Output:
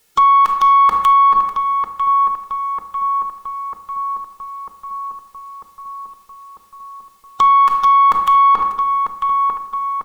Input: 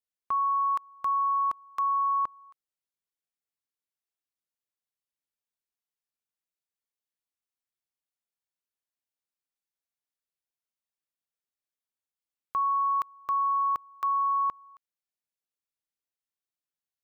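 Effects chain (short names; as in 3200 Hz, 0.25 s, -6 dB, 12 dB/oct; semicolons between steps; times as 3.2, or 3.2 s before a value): bell 210 Hz +13 dB 0.3 oct; notches 50/100/150/200/250/300 Hz; comb 2.3 ms, depth 52%; compressor 3:1, threshold -38 dBFS, peak gain reduction 6 dB; added harmonics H 5 -8 dB, 6 -42 dB, 7 -23 dB, 8 -25 dB, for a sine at -22.5 dBFS; time stretch by phase-locked vocoder 0.59×; on a send: darkening echo 0.946 s, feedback 72%, low-pass 1800 Hz, level -13 dB; on the sum: shoebox room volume 350 m³, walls mixed, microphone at 0.51 m; maximiser +33 dB; gain -5.5 dB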